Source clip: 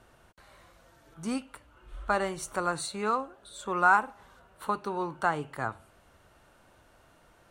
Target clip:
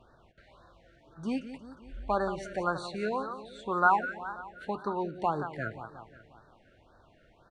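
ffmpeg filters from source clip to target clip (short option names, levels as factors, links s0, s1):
-filter_complex "[0:a]lowpass=3400,asplit=2[s0][s1];[s1]aecho=0:1:178|356|534|712|890|1068:0.266|0.152|0.0864|0.0493|0.0281|0.016[s2];[s0][s2]amix=inputs=2:normalize=0,afftfilt=real='re*(1-between(b*sr/1024,930*pow(2600/930,0.5+0.5*sin(2*PI*1.9*pts/sr))/1.41,930*pow(2600/930,0.5+0.5*sin(2*PI*1.9*pts/sr))*1.41))':imag='im*(1-between(b*sr/1024,930*pow(2600/930,0.5+0.5*sin(2*PI*1.9*pts/sr))/1.41,930*pow(2600/930,0.5+0.5*sin(2*PI*1.9*pts/sr))*1.41))':win_size=1024:overlap=0.75"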